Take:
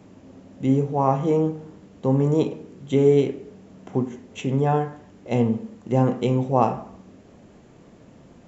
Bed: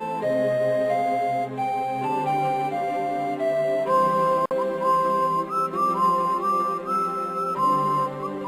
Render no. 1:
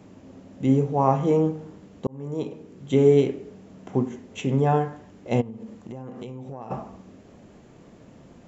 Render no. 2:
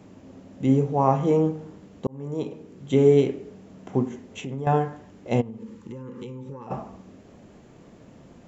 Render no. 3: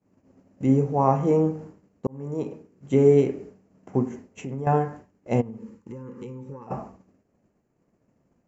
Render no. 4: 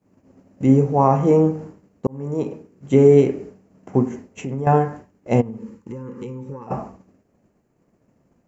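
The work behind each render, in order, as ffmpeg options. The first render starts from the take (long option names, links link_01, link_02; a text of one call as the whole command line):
ffmpeg -i in.wav -filter_complex "[0:a]asplit=3[link_01][link_02][link_03];[link_01]afade=type=out:start_time=5.4:duration=0.02[link_04];[link_02]acompressor=threshold=-33dB:ratio=10:attack=3.2:release=140:knee=1:detection=peak,afade=type=in:start_time=5.4:duration=0.02,afade=type=out:start_time=6.7:duration=0.02[link_05];[link_03]afade=type=in:start_time=6.7:duration=0.02[link_06];[link_04][link_05][link_06]amix=inputs=3:normalize=0,asplit=2[link_07][link_08];[link_07]atrim=end=2.07,asetpts=PTS-STARTPTS,afade=type=out:start_time=2.066:duration=0.004:curve=hsin[link_09];[link_08]atrim=start=2.07,asetpts=PTS-STARTPTS,afade=type=in:duration=0.87[link_10];[link_09][link_10]concat=n=2:v=0:a=1" out.wav
ffmpeg -i in.wav -filter_complex "[0:a]asettb=1/sr,asplit=3[link_01][link_02][link_03];[link_01]atrim=end=4.254[link_04];[link_02]atrim=start=4.25:end=4.67,asetpts=PTS-STARTPTS,afade=type=in:duration=0.004:curve=qsin,afade=type=out:start_time=0.416:duration=0.004:curve=qsin,acompressor=threshold=-33dB:ratio=2.5:attack=3.2:release=140:knee=1:detection=peak[link_05];[link_03]atrim=start=4.666[link_06];[link_04][link_05]acrossfade=duration=0.004:curve1=hsin:curve2=qsin[link_07];[link_07][link_06]acrossfade=duration=0.004:curve1=qsin:curve2=hsin,asettb=1/sr,asplit=3[link_08][link_09][link_10];[link_08]atrim=end=5.584[link_11];[link_09]atrim=start=5.58:end=6.67,asetpts=PTS-STARTPTS,afade=type=in:duration=0.004:curve=qsin,afade=type=out:start_time=1.086:duration=0.004:curve=qsin,asuperstop=centerf=680:order=20:qfactor=2.6[link_12];[link_10]atrim=start=6.666[link_13];[link_11][link_12]acrossfade=duration=0.004:curve1=hsin:curve2=qsin[link_14];[link_14][link_13]acrossfade=duration=0.004:curve1=qsin:curve2=hsin" out.wav
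ffmpeg -i in.wav -af "agate=range=-33dB:threshold=-36dB:ratio=3:detection=peak,equalizer=frequency=3500:width=3:gain=-14" out.wav
ffmpeg -i in.wav -af "volume=5.5dB,alimiter=limit=-3dB:level=0:latency=1" out.wav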